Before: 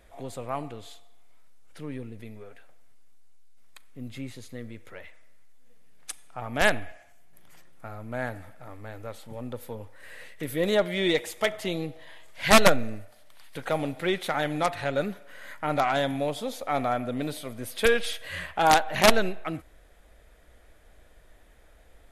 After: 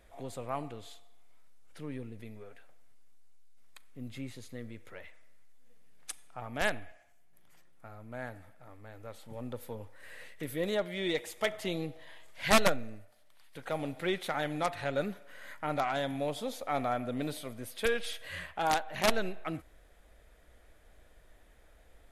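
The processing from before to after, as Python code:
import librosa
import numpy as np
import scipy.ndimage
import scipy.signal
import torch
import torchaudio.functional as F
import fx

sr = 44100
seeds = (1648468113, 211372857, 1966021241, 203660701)

y = fx.rider(x, sr, range_db=3, speed_s=0.5)
y = y * librosa.db_to_amplitude(-7.0)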